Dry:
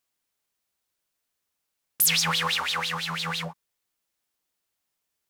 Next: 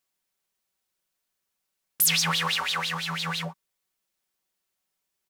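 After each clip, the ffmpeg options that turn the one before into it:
ffmpeg -i in.wav -af "aecho=1:1:5.3:0.4,volume=-1dB" out.wav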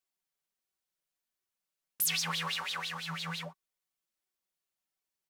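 ffmpeg -i in.wav -af "flanger=delay=2.6:depth=4.5:regen=51:speed=1.4:shape=sinusoidal,volume=-4.5dB" out.wav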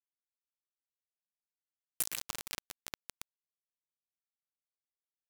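ffmpeg -i in.wav -af "acompressor=threshold=-37dB:ratio=4,aecho=1:1:111:0.531,acrusher=bits=4:mix=0:aa=0.000001,volume=5dB" out.wav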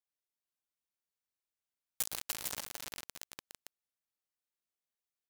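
ffmpeg -i in.wav -af "aecho=1:1:294|451:0.531|0.562,aeval=exprs='val(0)*sgn(sin(2*PI*1800*n/s))':channel_layout=same,volume=-1.5dB" out.wav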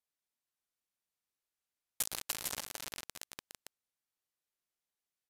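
ffmpeg -i in.wav -af "aresample=32000,aresample=44100,volume=1dB" out.wav

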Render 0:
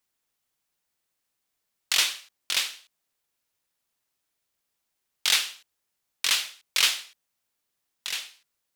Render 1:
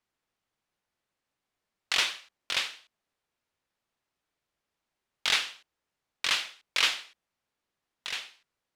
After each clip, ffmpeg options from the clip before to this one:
ffmpeg -i in.wav -af "aemphasis=mode=reproduction:type=75fm,volume=1.5dB" out.wav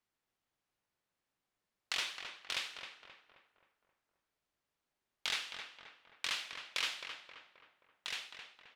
ffmpeg -i in.wav -filter_complex "[0:a]acompressor=threshold=-34dB:ratio=2,asplit=2[link_01][link_02];[link_02]adelay=265,lowpass=frequency=2100:poles=1,volume=-6dB,asplit=2[link_03][link_04];[link_04]adelay=265,lowpass=frequency=2100:poles=1,volume=0.52,asplit=2[link_05][link_06];[link_06]adelay=265,lowpass=frequency=2100:poles=1,volume=0.52,asplit=2[link_07][link_08];[link_08]adelay=265,lowpass=frequency=2100:poles=1,volume=0.52,asplit=2[link_09][link_10];[link_10]adelay=265,lowpass=frequency=2100:poles=1,volume=0.52,asplit=2[link_11][link_12];[link_12]adelay=265,lowpass=frequency=2100:poles=1,volume=0.52[link_13];[link_03][link_05][link_07][link_09][link_11][link_13]amix=inputs=6:normalize=0[link_14];[link_01][link_14]amix=inputs=2:normalize=0,volume=-4dB" out.wav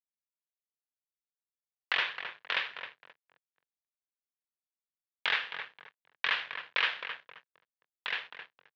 ffmpeg -i in.wav -af "acompressor=mode=upward:threshold=-55dB:ratio=2.5,aeval=exprs='sgn(val(0))*max(abs(val(0))-0.00224,0)':channel_layout=same,highpass=frequency=130:width=0.5412,highpass=frequency=130:width=1.3066,equalizer=frequency=210:width_type=q:width=4:gain=-8,equalizer=frequency=310:width_type=q:width=4:gain=-7,equalizer=frequency=480:width_type=q:width=4:gain=4,equalizer=frequency=1000:width_type=q:width=4:gain=4,equalizer=frequency=1700:width_type=q:width=4:gain=8,lowpass=frequency=3300:width=0.5412,lowpass=frequency=3300:width=1.3066,volume=8dB" out.wav

